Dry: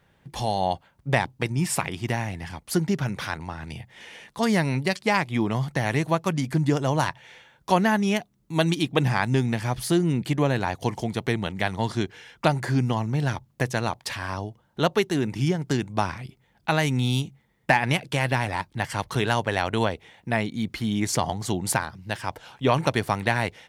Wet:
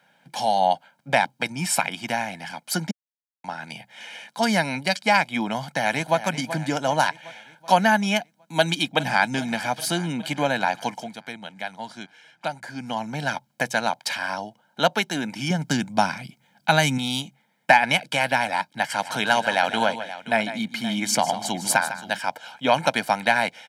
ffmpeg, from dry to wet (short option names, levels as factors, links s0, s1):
-filter_complex "[0:a]asplit=2[s0][s1];[s1]afade=t=in:st=5.58:d=0.01,afade=t=out:st=6.24:d=0.01,aecho=0:1:380|760|1140|1520|1900|2280:0.251189|0.138154|0.0759846|0.0417915|0.0229853|0.0126419[s2];[s0][s2]amix=inputs=2:normalize=0,asplit=2[s3][s4];[s4]afade=t=in:st=8.56:d=0.01,afade=t=out:st=9.26:d=0.01,aecho=0:1:410|820|1230|1640|2050|2460|2870|3280|3690:0.125893|0.0944194|0.0708146|0.0531109|0.0398332|0.0298749|0.0224062|0.0168046|0.0126035[s5];[s3][s5]amix=inputs=2:normalize=0,asettb=1/sr,asplit=3[s6][s7][s8];[s6]atrim=end=15.504[s9];[s7]atrim=start=15.5:end=16.98,asetpts=PTS-STARTPTS,afade=t=in:d=0.004:c=qsin,afade=t=out:st=1.476:d=0.004:c=qsin,bass=f=250:g=9,treble=f=4000:g=4[s10];[s8]atrim=start=16.976[s11];[s9][s10]acrossfade=d=0.004:c1=hsin:c2=qsin[s12];[s12][s11]acrossfade=d=0.004:c1=qsin:c2=hsin,asplit=3[s13][s14][s15];[s13]afade=t=out:st=19:d=0.02[s16];[s14]aecho=1:1:151|525:0.251|0.178,afade=t=in:st=19:d=0.02,afade=t=out:st=22.18:d=0.02[s17];[s15]afade=t=in:st=22.18:d=0.02[s18];[s16][s17][s18]amix=inputs=3:normalize=0,asplit=5[s19][s20][s21][s22][s23];[s19]atrim=end=2.91,asetpts=PTS-STARTPTS,afade=t=out:st=2.906:d=0.004:c=hsin[s24];[s20]atrim=start=2.91:end=3.44,asetpts=PTS-STARTPTS,volume=0[s25];[s21]atrim=start=3.44:end=11.17,asetpts=PTS-STARTPTS,afade=t=in:d=0.004:c=hsin,afade=t=out:st=7.32:d=0.41:silence=0.298538[s26];[s22]atrim=start=11.17:end=12.72,asetpts=PTS-STARTPTS,volume=0.299[s27];[s23]atrim=start=12.72,asetpts=PTS-STARTPTS,afade=t=in:d=0.41:silence=0.298538[s28];[s24][s25][s26][s27][s28]concat=n=5:v=0:a=1,highpass=f=200:w=0.5412,highpass=f=200:w=1.3066,equalizer=f=3100:w=0.31:g=3.5,aecho=1:1:1.3:0.74"